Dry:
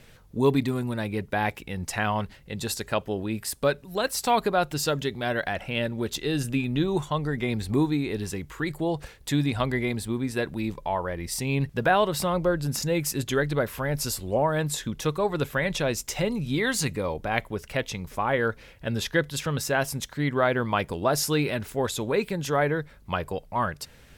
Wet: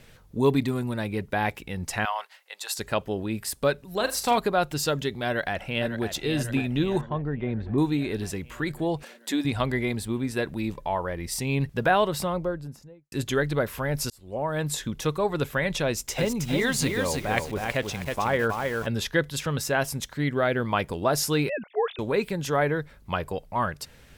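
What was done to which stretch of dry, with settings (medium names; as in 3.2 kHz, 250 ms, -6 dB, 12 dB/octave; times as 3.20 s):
2.05–2.78 s: high-pass 710 Hz 24 dB/octave
3.96–4.38 s: flutter echo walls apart 7.1 m, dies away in 0.26 s
5.26–6.07 s: echo throw 550 ms, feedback 65%, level -9 dB
7.01–7.78 s: tape spacing loss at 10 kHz 44 dB
9.03–9.45 s: brick-wall FIR high-pass 180 Hz
11.97–13.12 s: studio fade out
14.10–14.71 s: fade in linear
15.86–18.87 s: bit-crushed delay 319 ms, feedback 35%, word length 7-bit, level -3.5 dB
20.24–20.65 s: peaking EQ 1 kHz -8 dB 0.52 oct
21.49–21.99 s: formants replaced by sine waves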